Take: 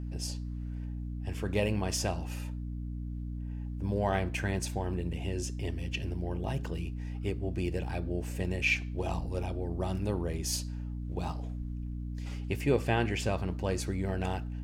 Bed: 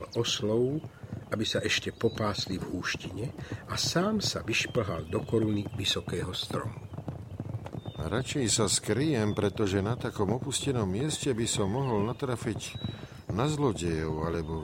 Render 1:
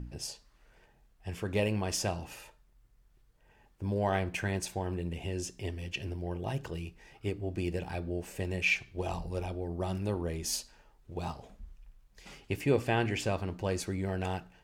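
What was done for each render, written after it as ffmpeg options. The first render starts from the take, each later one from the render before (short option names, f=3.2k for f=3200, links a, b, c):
-af "bandreject=f=60:t=h:w=4,bandreject=f=120:t=h:w=4,bandreject=f=180:t=h:w=4,bandreject=f=240:t=h:w=4,bandreject=f=300:t=h:w=4"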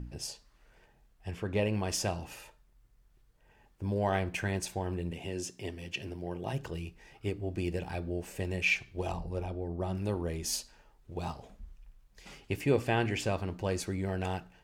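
-filter_complex "[0:a]asettb=1/sr,asplit=3[a][b][c];[a]atrim=end=1.314[d];[b]atrim=start=1.31:end=1.73,asetpts=PTS-STARTPTS,afade=t=in:d=0.004:c=qsin,afade=t=out:st=0.416:d=0.004:c=qsin,highshelf=f=5.2k:g=-10.5[e];[c]atrim=start=1.726[f];[d][e]acrossfade=d=0.004:c1=hsin:c2=qsin[g];[g][f]acrossfade=d=0.004:c1=qsin:c2=hsin,asettb=1/sr,asplit=3[h][i][j];[h]atrim=end=5.114[k];[i]atrim=start=5.11:end=6.53,asetpts=PTS-STARTPTS,afade=t=in:d=0.004:c=qsin,afade=t=out:st=1.416:d=0.004:c=qsin,highpass=120[l];[j]atrim=start=6.526[m];[k][l]acrossfade=d=0.004:c1=hsin:c2=qsin[n];[n][m]acrossfade=d=0.004:c1=qsin:c2=hsin,asettb=1/sr,asplit=3[o][p][q];[o]atrim=end=9.124[r];[p]atrim=start=9.12:end=9.98,asetpts=PTS-STARTPTS,afade=t=in:d=0.004:c=qsin,afade=t=out:st=0.856:d=0.004:c=qsin,highshelf=f=2.2k:g=-8[s];[q]atrim=start=9.976[t];[r][s]acrossfade=d=0.004:c1=hsin:c2=qsin[u];[u][t]acrossfade=d=0.004:c1=qsin:c2=hsin"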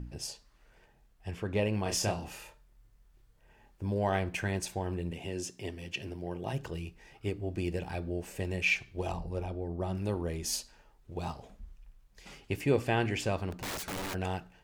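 -filter_complex "[0:a]asettb=1/sr,asplit=3[a][b][c];[a]atrim=end=1.834[d];[b]atrim=start=1.83:end=3.83,asetpts=PTS-STARTPTS,afade=t=in:d=0.004:c=qsin,afade=t=out:st=1.996:d=0.004:c=qsin,asplit=2[e][f];[f]adelay=28,volume=-4dB[g];[e][g]amix=inputs=2:normalize=0,atrim=end_sample=88200[h];[c]atrim=start=3.826[i];[d][h]acrossfade=d=0.004:c1=hsin:c2=qsin[j];[j][i]acrossfade=d=0.004:c1=qsin:c2=hsin,asplit=3[k][l][m];[k]afade=t=out:st=13.51:d=0.02[n];[l]aeval=exprs='(mod(42.2*val(0)+1,2)-1)/42.2':c=same,afade=t=in:st=13.51:d=0.02,afade=t=out:st=14.13:d=0.02[o];[m]afade=t=in:st=14.13:d=0.02[p];[n][o][p]amix=inputs=3:normalize=0"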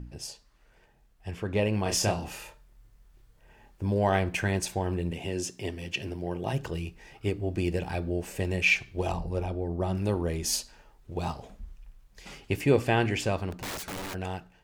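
-af "dynaudnorm=f=230:g=13:m=5dB"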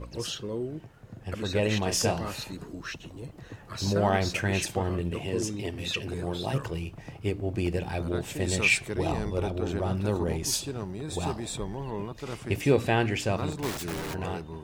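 -filter_complex "[1:a]volume=-6dB[a];[0:a][a]amix=inputs=2:normalize=0"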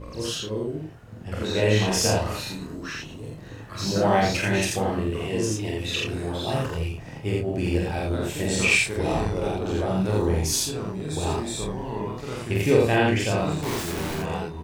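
-filter_complex "[0:a]asplit=2[a][b];[b]adelay=26,volume=-6.5dB[c];[a][c]amix=inputs=2:normalize=0,aecho=1:1:46.65|84.55:0.794|0.891"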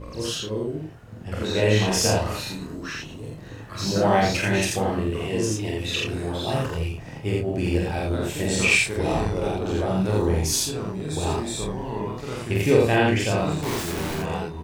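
-af "volume=1dB"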